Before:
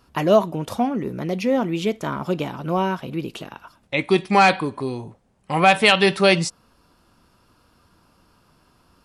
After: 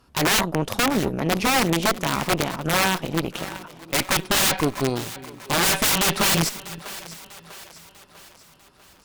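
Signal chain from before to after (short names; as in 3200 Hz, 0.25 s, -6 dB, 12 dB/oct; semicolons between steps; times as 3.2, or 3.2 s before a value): wrapped overs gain 16.5 dB; split-band echo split 370 Hz, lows 0.351 s, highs 0.646 s, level -14 dB; added harmonics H 4 -13 dB, 7 -29 dB, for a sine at -13.5 dBFS; gain +2 dB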